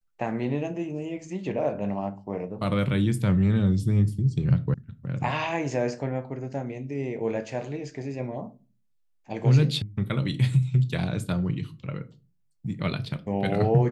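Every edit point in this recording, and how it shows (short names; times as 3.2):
4.74 sound cut off
9.82 sound cut off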